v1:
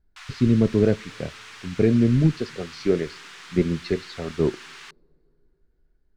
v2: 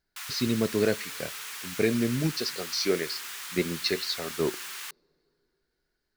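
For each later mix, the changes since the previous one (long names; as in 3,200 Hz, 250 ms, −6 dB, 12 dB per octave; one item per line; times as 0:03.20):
speech: add spectral tilt +4 dB per octave
master: remove high-frequency loss of the air 110 metres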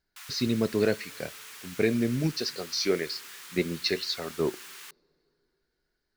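background −6.5 dB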